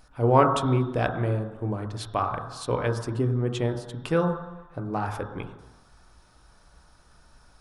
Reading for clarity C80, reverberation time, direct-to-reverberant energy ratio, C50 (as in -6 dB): 8.5 dB, 1.1 s, 3.0 dB, 6.5 dB